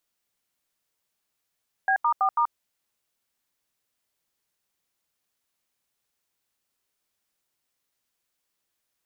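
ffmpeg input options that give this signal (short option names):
-f lavfi -i "aevalsrc='0.0841*clip(min(mod(t,0.164),0.082-mod(t,0.164))/0.002,0,1)*(eq(floor(t/0.164),0)*(sin(2*PI*770*mod(t,0.164))+sin(2*PI*1633*mod(t,0.164)))+eq(floor(t/0.164),1)*(sin(2*PI*941*mod(t,0.164))+sin(2*PI*1209*mod(t,0.164)))+eq(floor(t/0.164),2)*(sin(2*PI*770*mod(t,0.164))+sin(2*PI*1209*mod(t,0.164)))+eq(floor(t/0.164),3)*(sin(2*PI*941*mod(t,0.164))+sin(2*PI*1209*mod(t,0.164))))':d=0.656:s=44100"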